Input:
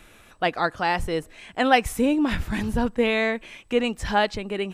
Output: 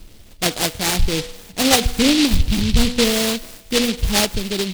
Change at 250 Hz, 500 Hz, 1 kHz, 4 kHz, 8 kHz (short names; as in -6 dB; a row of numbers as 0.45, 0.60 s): +5.5, +1.5, -2.5, +13.0, +19.5 dB